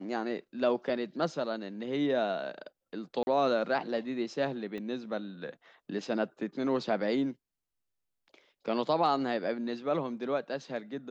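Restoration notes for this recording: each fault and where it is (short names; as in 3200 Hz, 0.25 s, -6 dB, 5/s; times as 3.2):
3.23–3.27 gap 41 ms
4.78 pop -29 dBFS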